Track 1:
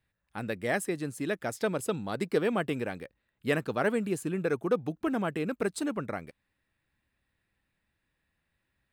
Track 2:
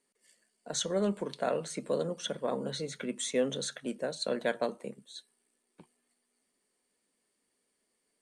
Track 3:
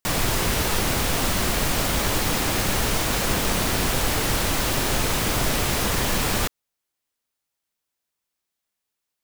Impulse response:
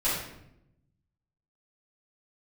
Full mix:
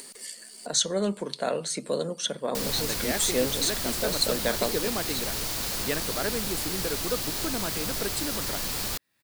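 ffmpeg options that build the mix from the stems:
-filter_complex "[0:a]highpass=150,adelay=2400,volume=-3.5dB[a];[1:a]volume=2.5dB[b];[2:a]adelay=2500,volume=-13dB[c];[a][b][c]amix=inputs=3:normalize=0,equalizer=f=4.5k:t=o:w=0.59:g=6.5,acompressor=mode=upward:threshold=-30dB:ratio=2.5,highshelf=f=6k:g=10"

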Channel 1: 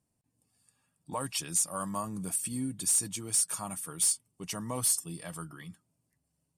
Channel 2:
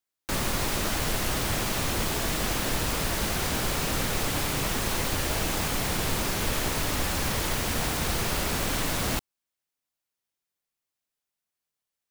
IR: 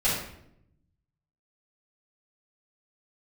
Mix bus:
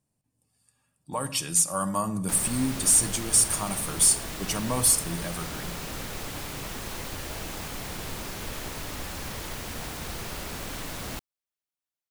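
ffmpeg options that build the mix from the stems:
-filter_complex "[0:a]dynaudnorm=f=150:g=17:m=6.5dB,volume=0dB,asplit=2[a][b];[b]volume=-22dB[c];[1:a]adelay=2000,volume=-8dB[d];[2:a]atrim=start_sample=2205[e];[c][e]afir=irnorm=-1:irlink=0[f];[a][d][f]amix=inputs=3:normalize=0"

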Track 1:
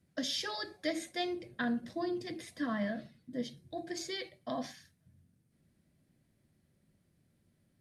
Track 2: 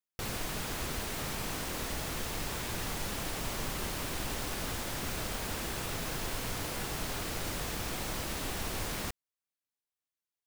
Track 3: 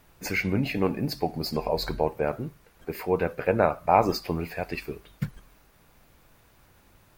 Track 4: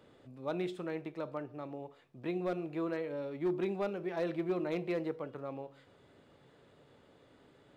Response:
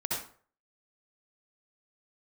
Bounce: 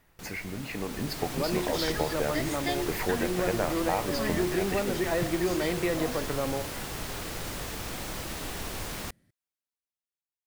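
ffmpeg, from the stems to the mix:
-filter_complex "[0:a]adelay=1500,volume=-4dB[a];[1:a]volume=-9.5dB[b];[2:a]volume=-6.5dB[c];[3:a]adelay=950,volume=3dB[d];[a][c][d]amix=inputs=3:normalize=0,equalizer=f=1.9k:w=6.8:g=8.5,acompressor=threshold=-35dB:ratio=5,volume=0dB[e];[b][e]amix=inputs=2:normalize=0,dynaudnorm=f=120:g=17:m=9.5dB"

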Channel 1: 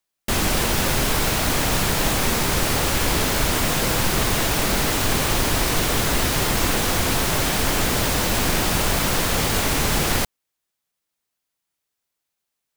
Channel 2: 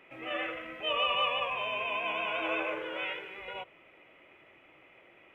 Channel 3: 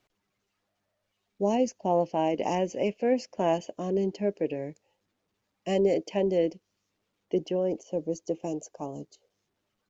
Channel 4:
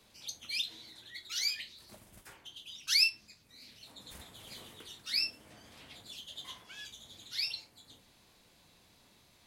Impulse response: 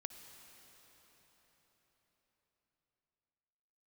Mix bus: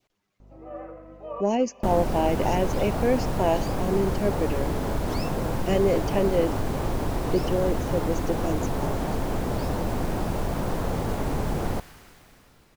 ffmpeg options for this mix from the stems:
-filter_complex "[0:a]adelay=1550,volume=2.5dB,asplit=2[a][b];[b]volume=-19.5dB[c];[1:a]lowpass=2.2k,aeval=exprs='val(0)+0.00316*(sin(2*PI*50*n/s)+sin(2*PI*2*50*n/s)/2+sin(2*PI*3*50*n/s)/3+sin(2*PI*4*50*n/s)/4+sin(2*PI*5*50*n/s)/5)':c=same,adelay=400,volume=0dB,asplit=2[d][e];[e]volume=-24dB[f];[2:a]acontrast=90,volume=-6dB,asplit=3[g][h][i];[h]volume=-20dB[j];[3:a]adelay=2200,volume=-16.5dB[k];[i]apad=whole_len=253306[l];[d][l]sidechaincompress=threshold=-37dB:ratio=8:attack=16:release=1330[m];[a][m]amix=inputs=2:normalize=0,lowpass=f=1k:w=0.5412,lowpass=f=1k:w=1.3066,acompressor=threshold=-24dB:ratio=6,volume=0dB[n];[4:a]atrim=start_sample=2205[o];[c][f][j]amix=inputs=3:normalize=0[p];[p][o]afir=irnorm=-1:irlink=0[q];[g][k][n][q]amix=inputs=4:normalize=0,adynamicequalizer=threshold=0.00562:dfrequency=1500:dqfactor=1.5:tfrequency=1500:tqfactor=1.5:attack=5:release=100:ratio=0.375:range=2.5:mode=boostabove:tftype=bell"

